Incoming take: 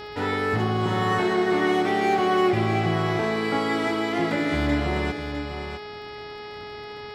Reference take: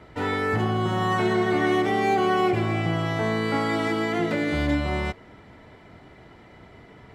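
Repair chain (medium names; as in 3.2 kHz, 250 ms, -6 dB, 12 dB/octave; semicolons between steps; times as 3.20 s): de-click; de-hum 418.4 Hz, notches 13; inverse comb 654 ms -8 dB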